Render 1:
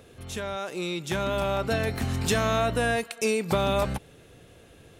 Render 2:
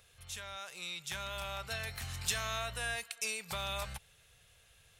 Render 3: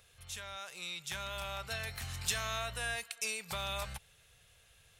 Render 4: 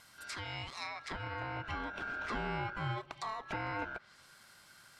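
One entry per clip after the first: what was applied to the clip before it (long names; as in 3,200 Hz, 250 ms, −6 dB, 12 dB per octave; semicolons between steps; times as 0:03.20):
guitar amp tone stack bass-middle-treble 10-0-10; level −3 dB
no processing that can be heard
ring modulation 1,500 Hz; treble cut that deepens with the level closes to 1,300 Hz, closed at −39.5 dBFS; level +7.5 dB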